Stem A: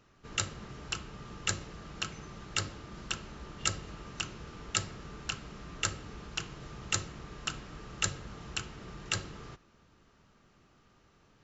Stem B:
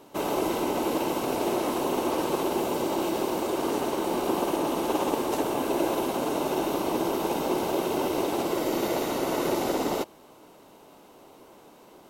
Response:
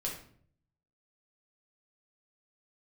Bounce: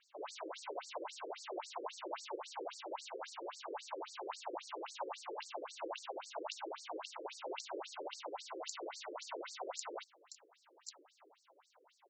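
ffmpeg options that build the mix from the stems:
-filter_complex "[0:a]adelay=1750,volume=0.224[s0];[1:a]highpass=660,volume=0.501[s1];[s0][s1]amix=inputs=2:normalize=0,afftfilt=real='re*between(b*sr/1024,370*pow(6100/370,0.5+0.5*sin(2*PI*3.7*pts/sr))/1.41,370*pow(6100/370,0.5+0.5*sin(2*PI*3.7*pts/sr))*1.41)':imag='im*between(b*sr/1024,370*pow(6100/370,0.5+0.5*sin(2*PI*3.7*pts/sr))/1.41,370*pow(6100/370,0.5+0.5*sin(2*PI*3.7*pts/sr))*1.41)':win_size=1024:overlap=0.75"

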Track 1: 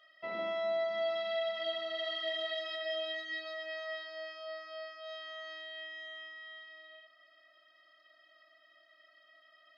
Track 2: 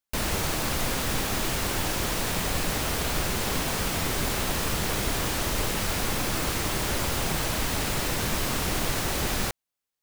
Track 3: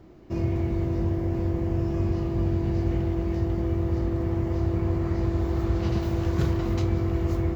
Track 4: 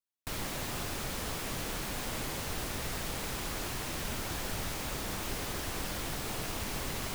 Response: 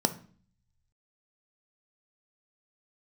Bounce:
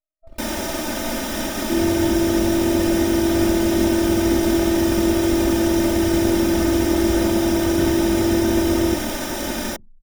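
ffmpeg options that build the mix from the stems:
-filter_complex "[0:a]equalizer=f=2100:t=o:w=1.9:g=-15,alimiter=level_in=5.31:limit=0.0631:level=0:latency=1:release=367,volume=0.188,aeval=exprs='0.0119*(cos(1*acos(clip(val(0)/0.0119,-1,1)))-cos(1*PI/2))+0.00168*(cos(6*acos(clip(val(0)/0.0119,-1,1)))-cos(6*PI/2))':c=same,volume=1.19[s0];[1:a]aeval=exprs='sgn(val(0))*max(abs(val(0))-0.01,0)':c=same,adelay=250,volume=0.794,asplit=2[s1][s2];[s2]volume=0.266[s3];[2:a]adelay=1400,volume=0.891,asplit=2[s4][s5];[s5]volume=0.282[s6];[3:a]volume=0.708[s7];[4:a]atrim=start_sample=2205[s8];[s3][s6]amix=inputs=2:normalize=0[s9];[s9][s8]afir=irnorm=-1:irlink=0[s10];[s0][s1][s4][s7][s10]amix=inputs=5:normalize=0,anlmdn=6.31,aecho=1:1:3.3:0.73"

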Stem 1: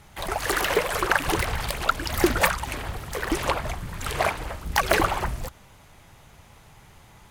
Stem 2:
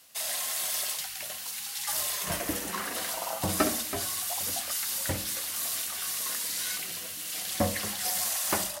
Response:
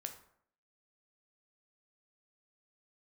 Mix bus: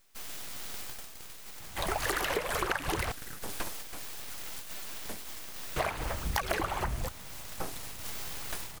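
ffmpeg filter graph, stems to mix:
-filter_complex "[0:a]adelay=1600,volume=0.944,asplit=3[s0][s1][s2];[s0]atrim=end=3.12,asetpts=PTS-STARTPTS,afade=t=out:st=3.116:d=0.004:c=hsin[s3];[s1]atrim=start=3.12:end=5.76,asetpts=PTS-STARTPTS,volume=0[s4];[s2]atrim=start=5.76,asetpts=PTS-STARTPTS,afade=t=in:d=0.004:c=hsin[s5];[s3][s4][s5]concat=n=3:v=0:a=1[s6];[1:a]aeval=exprs='abs(val(0))':c=same,volume=0.447[s7];[s6][s7]amix=inputs=2:normalize=0,acompressor=threshold=0.0447:ratio=12"

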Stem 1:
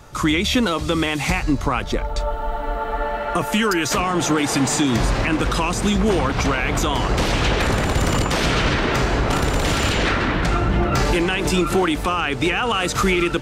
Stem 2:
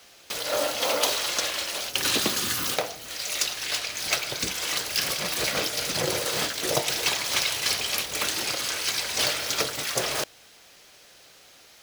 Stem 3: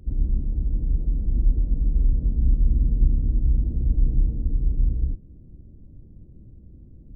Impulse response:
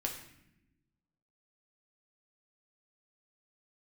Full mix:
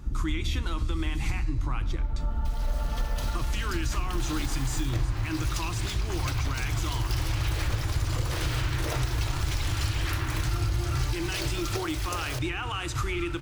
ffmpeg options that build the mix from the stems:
-filter_complex "[0:a]firequalizer=gain_entry='entry(120,0);entry(210,-29);entry(310,-7);entry(450,-22);entry(920,-11)':delay=0.05:min_phase=1,volume=0.668,asplit=2[s0][s1];[s1]volume=0.447[s2];[1:a]adelay=2150,volume=0.251,asplit=2[s3][s4];[s4]volume=0.355[s5];[2:a]volume=1.26[s6];[s3][s6]amix=inputs=2:normalize=0,acompressor=threshold=0.0708:ratio=6,volume=1[s7];[3:a]atrim=start_sample=2205[s8];[s2][s5]amix=inputs=2:normalize=0[s9];[s9][s8]afir=irnorm=-1:irlink=0[s10];[s0][s7][s10]amix=inputs=3:normalize=0,acompressor=threshold=0.0562:ratio=2.5"

